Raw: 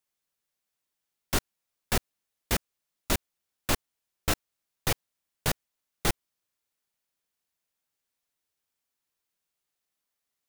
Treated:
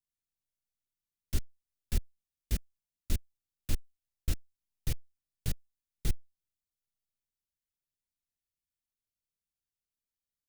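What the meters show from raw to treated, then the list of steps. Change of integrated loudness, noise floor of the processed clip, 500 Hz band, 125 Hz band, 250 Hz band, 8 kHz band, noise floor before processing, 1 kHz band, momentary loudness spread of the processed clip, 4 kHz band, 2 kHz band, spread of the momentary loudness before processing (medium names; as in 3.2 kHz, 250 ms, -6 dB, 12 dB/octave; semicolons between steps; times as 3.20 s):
-7.5 dB, under -85 dBFS, -16.0 dB, -1.0 dB, -8.5 dB, -11.5 dB, -85 dBFS, -23.0 dB, 4 LU, -13.0 dB, -17.0 dB, 4 LU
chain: amplifier tone stack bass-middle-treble 10-0-1; trim +9 dB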